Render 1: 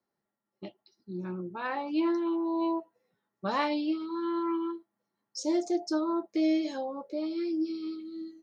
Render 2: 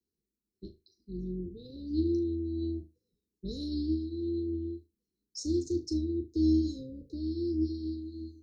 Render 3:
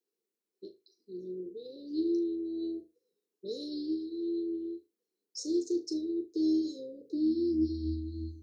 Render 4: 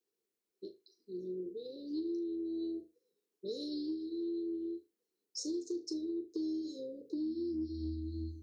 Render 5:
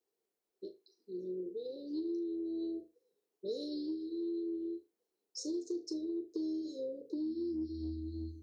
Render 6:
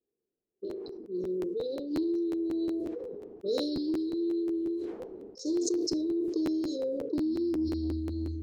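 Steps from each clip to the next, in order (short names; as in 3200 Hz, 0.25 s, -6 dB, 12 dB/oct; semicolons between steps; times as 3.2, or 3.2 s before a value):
octaver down 2 oct, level -4 dB; Chebyshev band-stop 460–3900 Hz, order 5; on a send: flutter echo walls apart 6.5 m, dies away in 0.23 s; on the sum: gain -2 dB
high-pass sweep 460 Hz -> 83 Hz, 6.99–7.86
compressor 6:1, threshold -35 dBFS, peak gain reduction 10.5 dB
bell 690 Hz +10 dB 1.2 oct; gain -2.5 dB
low-pass opened by the level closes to 300 Hz, open at -36.5 dBFS; crackling interface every 0.18 s, samples 512, repeat, from 0.33; sustainer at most 25 dB/s; gain +7 dB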